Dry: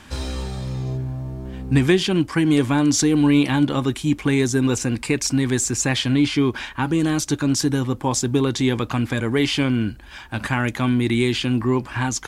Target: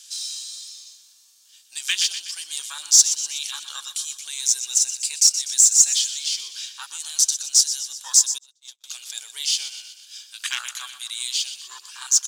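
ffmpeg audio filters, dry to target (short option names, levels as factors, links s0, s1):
-filter_complex "[0:a]afwtdn=0.0708,equalizer=f=6200:w=0.8:g=10.5,aecho=1:1:123|246|369|492|615|738:0.251|0.138|0.076|0.0418|0.023|0.0126,asettb=1/sr,asplit=3[s0][s1][s2];[s0]atrim=end=8.384[s3];[s1]atrim=start=8.38:end=8.84,asetpts=PTS-STARTPTS,afade=t=in:d=0.004:c=qsin,afade=t=out:st=0.456:d=0.004:c=qsin,agate=range=0.00398:threshold=0.178:ratio=16:detection=peak[s4];[s2]atrim=start=8.836[s5];[s3][s4]acrossfade=d=0.004:c1=hsin:c2=qsin[s6];[s6][s5]acrossfade=d=0.004:c1=qsin:c2=hsin,highpass=f=1400:w=0.5412,highpass=f=1400:w=1.3066,asoftclip=type=tanh:threshold=0.224,aexciter=amount=5.8:drive=8.3:freq=3000,acrusher=bits=7:mode=log:mix=0:aa=0.000001,volume=0.708"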